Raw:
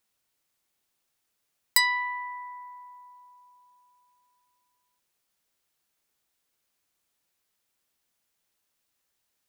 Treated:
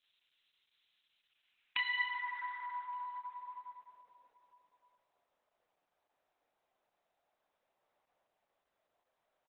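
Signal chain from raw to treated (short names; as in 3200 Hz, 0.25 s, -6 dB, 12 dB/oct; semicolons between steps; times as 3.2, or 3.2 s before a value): spectral whitening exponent 0.3; chorus voices 4, 0.46 Hz, delay 29 ms, depth 4.3 ms; 2.41–3.14 LPF 11000 Hz 24 dB/oct; on a send at -18.5 dB: band shelf 1900 Hz +13 dB 1.2 oct + reverb RT60 0.50 s, pre-delay 7 ms; on the sum: band-pass sweep 3400 Hz -> 680 Hz, 1.11–4.07; in parallel at -3 dB: sine folder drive 8 dB, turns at -14.5 dBFS; on the sum: compressor 2.5:1, threshold -44 dBFS, peak gain reduction 17 dB; outdoor echo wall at 200 m, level -26 dB; gain +4.5 dB; Opus 8 kbps 48000 Hz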